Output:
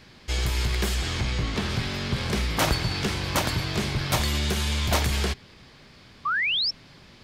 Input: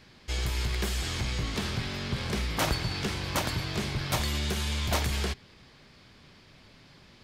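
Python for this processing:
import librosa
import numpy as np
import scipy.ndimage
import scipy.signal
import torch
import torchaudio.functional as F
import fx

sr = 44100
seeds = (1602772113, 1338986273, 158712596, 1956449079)

y = fx.high_shelf(x, sr, hz=fx.line((0.94, 10000.0), (1.69, 6500.0)), db=-10.5, at=(0.94, 1.69), fade=0.02)
y = fx.spec_paint(y, sr, seeds[0], shape='rise', start_s=6.25, length_s=0.46, low_hz=1100.0, high_hz=5600.0, level_db=-29.0)
y = F.gain(torch.from_numpy(y), 4.5).numpy()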